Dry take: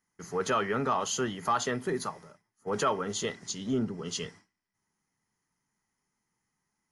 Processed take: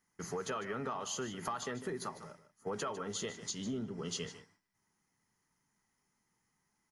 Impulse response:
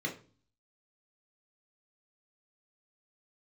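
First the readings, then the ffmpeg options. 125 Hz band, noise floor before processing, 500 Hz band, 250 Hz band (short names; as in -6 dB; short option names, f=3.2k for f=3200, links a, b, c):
-7.0 dB, -83 dBFS, -8.5 dB, -8.0 dB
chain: -filter_complex "[0:a]acompressor=threshold=-38dB:ratio=6,asplit=2[a][b];[b]aecho=0:1:151:0.211[c];[a][c]amix=inputs=2:normalize=0,volume=1.5dB"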